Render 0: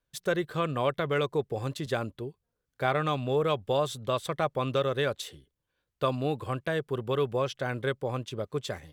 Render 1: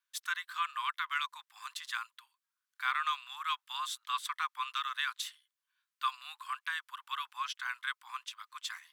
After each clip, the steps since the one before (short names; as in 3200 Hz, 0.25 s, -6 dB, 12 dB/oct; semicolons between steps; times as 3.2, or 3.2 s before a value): steep high-pass 1000 Hz 72 dB/oct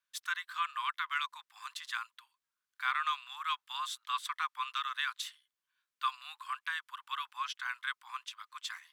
high shelf 7600 Hz -4.5 dB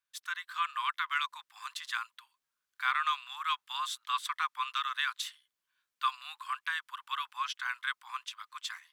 AGC gain up to 5 dB; gain -2.5 dB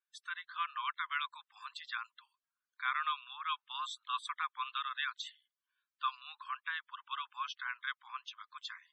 loudest bins only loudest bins 64; gain -4.5 dB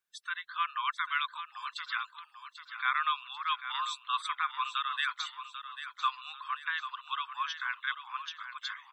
feedback echo 0.792 s, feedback 43%, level -10.5 dB; gain +5 dB